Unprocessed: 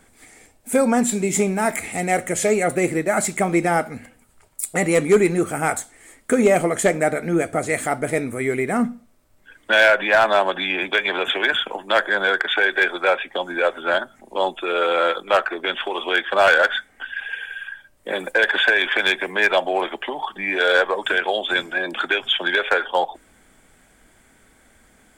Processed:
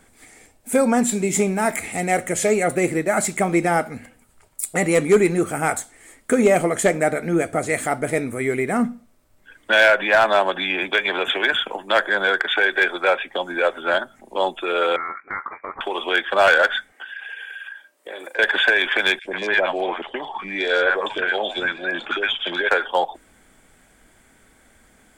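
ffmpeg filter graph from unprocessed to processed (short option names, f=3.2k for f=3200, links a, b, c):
-filter_complex "[0:a]asettb=1/sr,asplit=3[a][b][c];[a]atrim=end=14.964[d];[b]atrim=start=14.96:end=15.81,asetpts=PTS-STARTPTS,afade=t=in:d=0.004:c=qsin,afade=t=out:st=0.846:d=0.004:c=qsin,highpass=1.1k,lowpass=f=2.3k:t=q:w=0.5098,lowpass=f=2.3k:t=q:w=0.6013,lowpass=f=2.3k:t=q:w=0.9,lowpass=f=2.3k:t=q:w=2.563,afreqshift=-2700,acompressor=threshold=-28dB:ratio=2:attack=3.2:release=140:knee=1:detection=peak[e];[c]atrim=start=15.806[f];[d][e]acrossfade=d=0.004:c1=hsin:c2=qsin[g];[g][f]acrossfade=d=0.004:c1=qsin:c2=hsin,asettb=1/sr,asplit=3[h][i][j];[h]atrim=end=16.924[k];[i]atrim=start=16.92:end=18.39,asetpts=PTS-STARTPTS,afade=t=in:d=0.004:c=qsin,afade=t=out:st=1.466:d=0.004:c=qsin,highpass=f=310:w=0.5412,highpass=f=310:w=1.3066,asplit=2[l][m];[m]adelay=35,volume=-13.5dB[n];[l][n]amix=inputs=2:normalize=0,atrim=end_sample=64827,acompressor=threshold=-31dB:ratio=4:attack=3.2:release=140:knee=1:detection=peak[o];[j]atrim=start=18.386[p];[k][o]acrossfade=d=0.004:c1=hsin:c2=qsin[q];[q][p]acrossfade=d=0.004:c1=qsin:c2=hsin,asettb=1/sr,asplit=3[r][s][t];[r]atrim=end=19.194[u];[s]atrim=start=19.19:end=22.69,asetpts=PTS-STARTPTS,afade=t=in:d=0.004:c=qsin,afade=t=out:st=3.496:d=0.004:c=qsin,lowpass=6.2k,acrossover=split=750|2900[v][w][x];[v]adelay=60[y];[w]adelay=120[z];[y][z][x]amix=inputs=3:normalize=0,atrim=end_sample=154350[aa];[t]atrim=start=22.686[ab];[u][aa]acrossfade=d=0.004:c1=hsin:c2=qsin[ac];[ac][ab]acrossfade=d=0.004:c1=qsin:c2=hsin"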